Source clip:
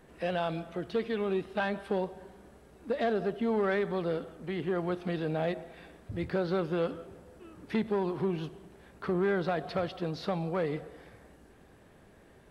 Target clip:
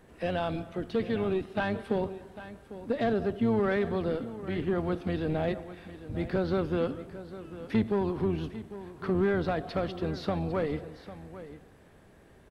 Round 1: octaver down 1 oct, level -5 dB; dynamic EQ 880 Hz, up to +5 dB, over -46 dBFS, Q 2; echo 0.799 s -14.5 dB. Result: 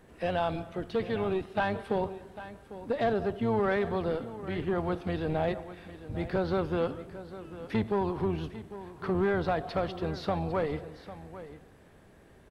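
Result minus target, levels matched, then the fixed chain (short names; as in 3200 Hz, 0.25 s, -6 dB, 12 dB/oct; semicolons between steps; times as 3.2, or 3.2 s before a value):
1000 Hz band +3.5 dB
octaver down 1 oct, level -5 dB; dynamic EQ 250 Hz, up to +5 dB, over -46 dBFS, Q 2; echo 0.799 s -14.5 dB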